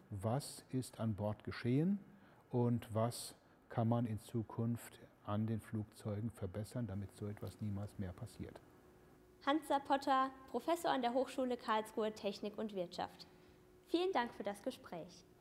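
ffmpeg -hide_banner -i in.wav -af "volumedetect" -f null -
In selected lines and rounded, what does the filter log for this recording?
mean_volume: -40.9 dB
max_volume: -20.6 dB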